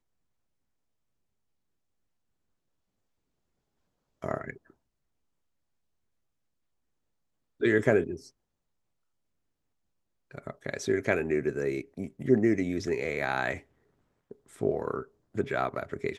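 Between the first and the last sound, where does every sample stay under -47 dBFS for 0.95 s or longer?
4.70–7.61 s
8.28–10.31 s

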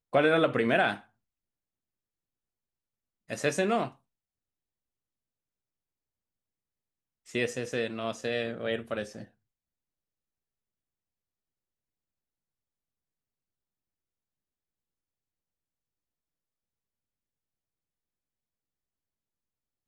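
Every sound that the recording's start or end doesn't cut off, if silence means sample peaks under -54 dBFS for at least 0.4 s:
3.29–3.96 s
7.26–9.28 s

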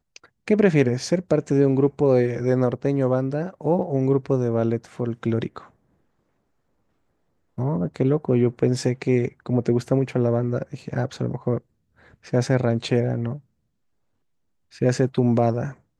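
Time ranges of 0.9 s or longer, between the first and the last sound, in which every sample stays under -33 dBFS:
5.58–7.58 s
13.37–14.81 s

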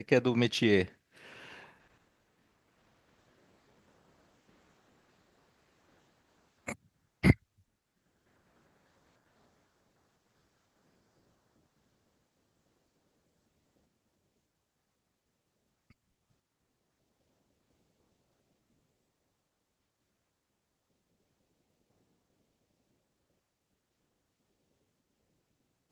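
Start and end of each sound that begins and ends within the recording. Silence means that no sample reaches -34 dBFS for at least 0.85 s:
6.68–7.33 s

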